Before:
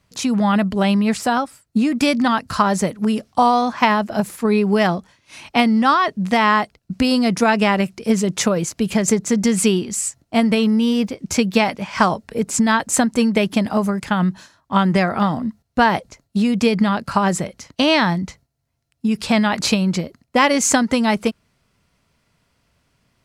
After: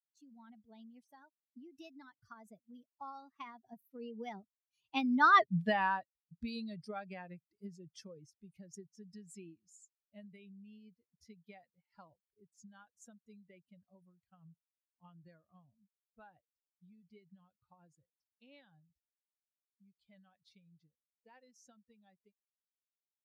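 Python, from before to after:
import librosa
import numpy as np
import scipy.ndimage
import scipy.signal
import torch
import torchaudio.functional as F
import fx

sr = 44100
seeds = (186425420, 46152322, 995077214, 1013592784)

y = fx.bin_expand(x, sr, power=2.0)
y = fx.doppler_pass(y, sr, speed_mps=38, closest_m=3.5, pass_at_s=5.43)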